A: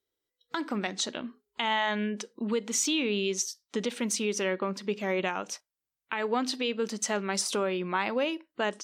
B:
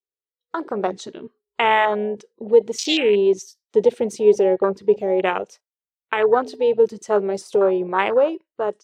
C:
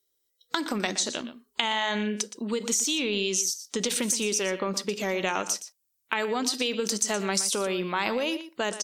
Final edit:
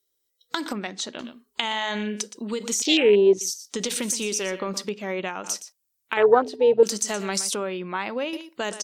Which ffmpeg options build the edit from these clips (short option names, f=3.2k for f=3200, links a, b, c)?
-filter_complex "[0:a]asplit=3[a][b][c];[1:a]asplit=2[d][e];[2:a]asplit=6[f][g][h][i][j][k];[f]atrim=end=0.732[l];[a]atrim=start=0.728:end=1.192[m];[g]atrim=start=1.188:end=2.822[n];[d]atrim=start=2.818:end=3.412[o];[h]atrim=start=3.408:end=4.892[p];[b]atrim=start=4.888:end=5.442[q];[i]atrim=start=5.438:end=6.172[r];[e]atrim=start=6.168:end=6.832[s];[j]atrim=start=6.828:end=7.542[t];[c]atrim=start=7.538:end=8.332[u];[k]atrim=start=8.328[v];[l][m]acrossfade=d=0.004:c1=hsin:c2=hsin[w];[w][n]acrossfade=d=0.004:c1=hsin:c2=hsin[x];[x][o]acrossfade=d=0.004:c1=hsin:c2=hsin[y];[y][p]acrossfade=d=0.004:c1=hsin:c2=hsin[z];[z][q]acrossfade=d=0.004:c1=hsin:c2=hsin[aa];[aa][r]acrossfade=d=0.004:c1=hsin:c2=hsin[ab];[ab][s]acrossfade=d=0.004:c1=hsin:c2=hsin[ac];[ac][t]acrossfade=d=0.004:c1=hsin:c2=hsin[ad];[ad][u]acrossfade=d=0.004:c1=hsin:c2=hsin[ae];[ae][v]acrossfade=d=0.004:c1=hsin:c2=hsin"